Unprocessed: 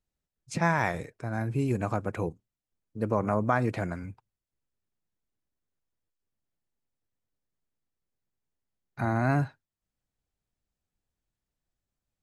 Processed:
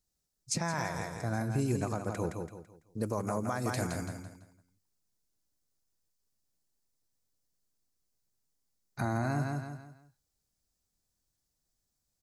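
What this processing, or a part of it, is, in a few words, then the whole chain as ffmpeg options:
over-bright horn tweeter: -filter_complex "[0:a]asettb=1/sr,asplit=3[a][b][c];[a]atrim=end=3.034[d];[b]atrim=start=3.03:end=4.06,asetpts=PTS-STARTPTS,afade=t=in:d=0.004:c=qsin,afade=t=out:st=1.026:d=0.004:c=qsin,aemphasis=mode=production:type=50kf[e];[c]atrim=start=4.056[f];[d][e]acrossfade=d=0.004:c1=hsin:c2=qsin[g];[g][f]acrossfade=d=0.004:c1=qsin:c2=hsin,highshelf=f=3.8k:t=q:w=1.5:g=8.5,aecho=1:1:167|334|501|668:0.447|0.143|0.0457|0.0146,alimiter=limit=-20.5dB:level=0:latency=1:release=422"

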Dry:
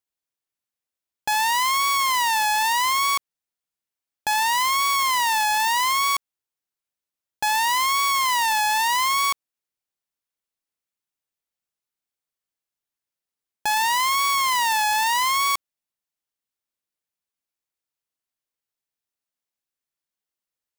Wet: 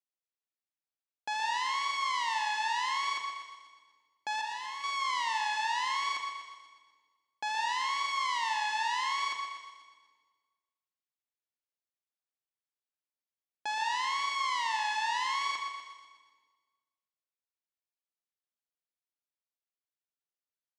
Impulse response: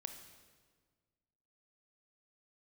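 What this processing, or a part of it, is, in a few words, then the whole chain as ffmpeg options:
supermarket ceiling speaker: -filter_complex "[0:a]asettb=1/sr,asplit=3[a][b][c];[a]atrim=end=4.414[d];[b]atrim=start=4.41:end=4.84,asetpts=PTS-STARTPTS,afade=t=in:d=0.004:c=qsin,afade=t=out:st=0.426:d=0.004:c=qsin,agate=range=-33dB:threshold=-14dB:ratio=3:detection=peak[e];[c]atrim=start=4.836[f];[d][e]acrossfade=d=0.004:c1=hsin:c2=qsin[g];[g][f]acrossfade=d=0.004:c1=qsin:c2=hsin,acrossover=split=8500[h][i];[i]acompressor=threshold=-46dB:ratio=4:attack=1:release=60[j];[h][j]amix=inputs=2:normalize=0,highpass=270,lowpass=6.3k[k];[1:a]atrim=start_sample=2205[l];[k][l]afir=irnorm=-1:irlink=0,aecho=1:1:123|246|369|492|615|738:0.355|0.195|0.107|0.059|0.0325|0.0179,volume=-7.5dB"

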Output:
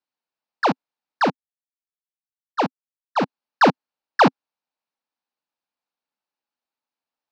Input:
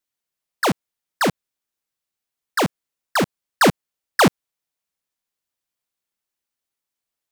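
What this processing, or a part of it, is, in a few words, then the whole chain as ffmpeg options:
kitchen radio: -filter_complex "[0:a]asplit=3[a][b][c];[a]afade=t=out:st=1.28:d=0.02[d];[b]agate=range=-21dB:threshold=-20dB:ratio=16:detection=peak,afade=t=in:st=1.28:d=0.02,afade=t=out:st=3.21:d=0.02[e];[c]afade=t=in:st=3.21:d=0.02[f];[d][e][f]amix=inputs=3:normalize=0,highpass=210,equalizer=f=260:t=q:w=4:g=3,equalizer=f=380:t=q:w=4:g=-4,equalizer=f=860:t=q:w=4:g=6,equalizer=f=2k:t=q:w=4:g=-6,equalizer=f=3.3k:t=q:w=4:g=-7,lowpass=f=4.4k:w=0.5412,lowpass=f=4.4k:w=1.3066"

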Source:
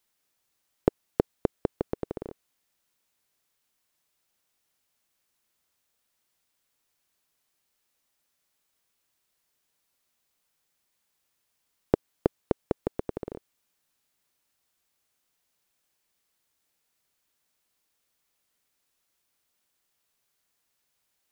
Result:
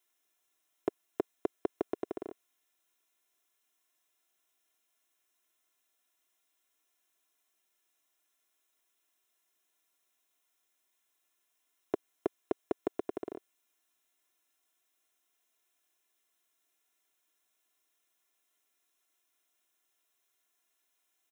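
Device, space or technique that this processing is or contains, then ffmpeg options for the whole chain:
PA system with an anti-feedback notch: -af "highpass=f=160:p=1,highpass=f=220:p=1,asuperstop=centerf=4600:order=4:qfactor=5.2,aecho=1:1:2.9:0.68,alimiter=limit=-15dB:level=0:latency=1:release=11,volume=-3dB"

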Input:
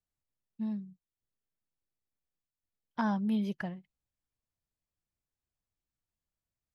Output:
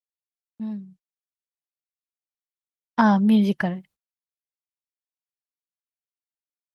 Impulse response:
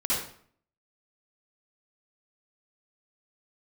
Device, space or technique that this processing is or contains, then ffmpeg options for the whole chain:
video call: -af "highpass=f=110:p=1,dynaudnorm=f=460:g=7:m=10dB,agate=range=-53dB:threshold=-54dB:ratio=16:detection=peak,volume=4dB" -ar 48000 -c:a libopus -b:a 32k

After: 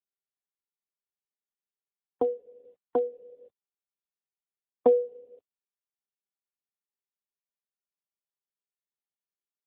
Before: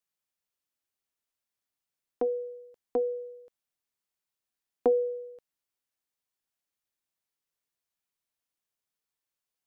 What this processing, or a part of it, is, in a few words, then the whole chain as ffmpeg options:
mobile call with aggressive noise cancelling: -filter_complex "[0:a]asettb=1/sr,asplit=3[a][b][c];[a]atrim=end=2.224[d];[b]atrim=start=2.22:end=3.35,asetpts=PTS-STARTPTS,afade=t=in:d=0.004:c=qsin,afade=t=out:st=1.126:d=0.004:c=qsin,aecho=1:1:2.8:0.36,atrim=end_sample=49833[e];[c]atrim=start=3.346[f];[d][e]acrossfade=d=0.004:c1=hsin:c2=qsin[g];[g][f]acrossfade=d=0.004:c1=qsin:c2=hsin,highpass=f=150:w=0.5412,highpass=f=150:w=1.3066,afftdn=nr=31:nf=-49,volume=4.5dB" -ar 8000 -c:a libopencore_amrnb -b:a 7950

